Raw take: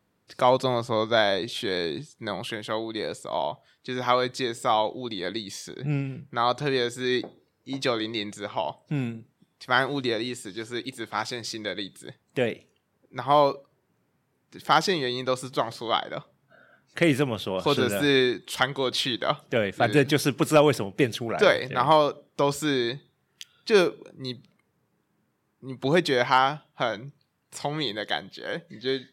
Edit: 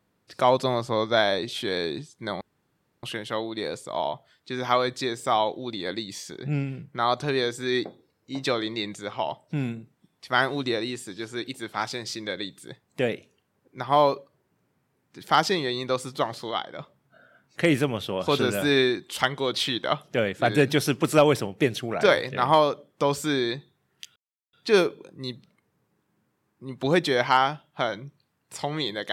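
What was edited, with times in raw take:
0:02.41: splice in room tone 0.62 s
0:15.89–0:16.18: clip gain −4.5 dB
0:23.54: splice in silence 0.37 s

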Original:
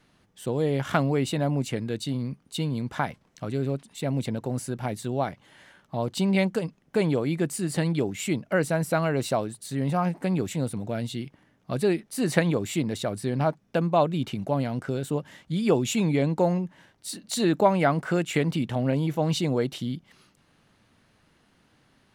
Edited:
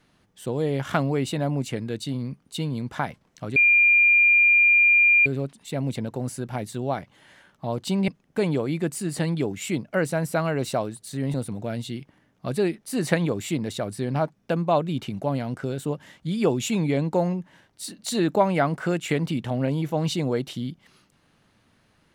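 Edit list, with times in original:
0:03.56: insert tone 2,400 Hz −13.5 dBFS 1.70 s
0:06.38–0:06.66: remove
0:09.92–0:10.59: remove

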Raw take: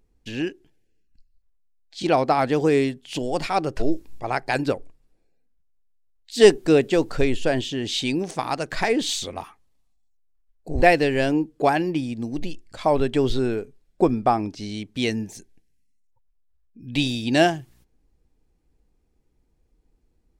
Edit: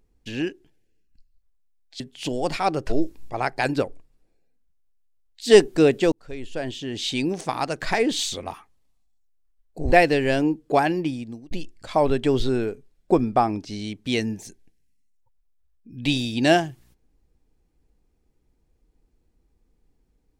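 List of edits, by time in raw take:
0:02.00–0:02.90: remove
0:07.02–0:08.17: fade in linear
0:11.77–0:12.41: fade out equal-power

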